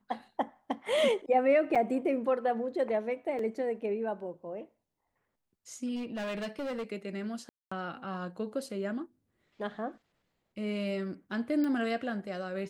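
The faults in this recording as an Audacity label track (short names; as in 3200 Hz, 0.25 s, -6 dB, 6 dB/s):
1.750000	1.760000	gap 5.7 ms
3.390000	3.390000	gap 2.8 ms
5.950000	6.920000	clipped -32.5 dBFS
7.490000	7.710000	gap 0.225 s
11.640000	11.640000	pop -23 dBFS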